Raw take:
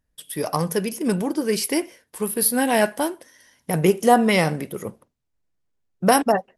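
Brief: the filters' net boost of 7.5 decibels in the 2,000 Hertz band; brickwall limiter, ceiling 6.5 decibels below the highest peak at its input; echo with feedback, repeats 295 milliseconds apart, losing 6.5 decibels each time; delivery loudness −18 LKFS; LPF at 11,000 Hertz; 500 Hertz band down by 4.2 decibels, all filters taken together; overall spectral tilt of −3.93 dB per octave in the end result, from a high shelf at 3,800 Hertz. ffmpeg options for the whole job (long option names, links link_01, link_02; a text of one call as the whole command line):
ffmpeg -i in.wav -af "lowpass=11000,equalizer=frequency=500:width_type=o:gain=-6,equalizer=frequency=2000:width_type=o:gain=8,highshelf=frequency=3800:gain=5,alimiter=limit=-8.5dB:level=0:latency=1,aecho=1:1:295|590|885|1180|1475|1770:0.473|0.222|0.105|0.0491|0.0231|0.0109,volume=4dB" out.wav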